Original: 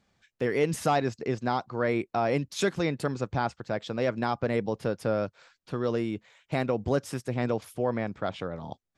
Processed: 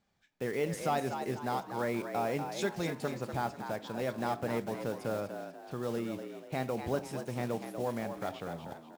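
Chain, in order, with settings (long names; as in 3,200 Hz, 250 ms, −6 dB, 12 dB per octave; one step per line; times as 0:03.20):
one scale factor per block 5 bits
parametric band 800 Hz +3.5 dB 0.35 octaves
echo with shifted repeats 243 ms, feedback 39%, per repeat +74 Hz, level −8 dB
on a send at −13.5 dB: convolution reverb RT60 0.50 s, pre-delay 5 ms
on the sum: level −7.5 dB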